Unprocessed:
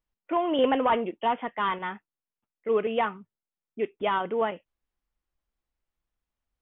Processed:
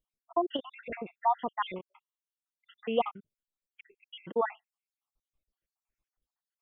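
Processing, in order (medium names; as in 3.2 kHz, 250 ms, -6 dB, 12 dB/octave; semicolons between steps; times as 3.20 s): random holes in the spectrogram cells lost 71%; 0.56–1.16 s: compression 10:1, threshold -34 dBFS, peak gain reduction 12.5 dB; 1.82–2.87 s: steep high-pass 920 Hz 36 dB/octave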